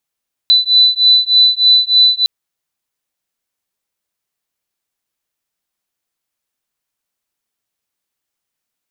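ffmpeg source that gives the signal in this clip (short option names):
-f lavfi -i "aevalsrc='0.299*(sin(2*PI*3990*t)+sin(2*PI*3993.3*t))':d=1.76:s=44100"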